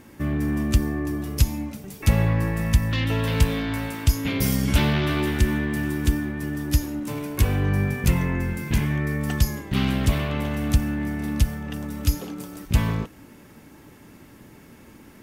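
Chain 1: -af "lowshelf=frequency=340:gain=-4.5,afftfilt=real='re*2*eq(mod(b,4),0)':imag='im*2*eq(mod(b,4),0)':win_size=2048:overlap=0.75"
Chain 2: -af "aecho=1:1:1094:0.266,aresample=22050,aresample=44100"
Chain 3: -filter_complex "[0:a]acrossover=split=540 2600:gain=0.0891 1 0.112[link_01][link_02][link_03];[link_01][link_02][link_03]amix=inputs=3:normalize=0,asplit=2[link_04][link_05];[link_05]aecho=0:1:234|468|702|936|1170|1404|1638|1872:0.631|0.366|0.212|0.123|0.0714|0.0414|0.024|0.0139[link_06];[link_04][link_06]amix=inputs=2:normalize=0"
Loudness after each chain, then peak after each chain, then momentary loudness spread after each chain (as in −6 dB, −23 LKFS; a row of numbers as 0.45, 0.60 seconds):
−31.0, −24.5, −34.0 LKFS; −12.0, −5.0, −14.5 dBFS; 11, 8, 11 LU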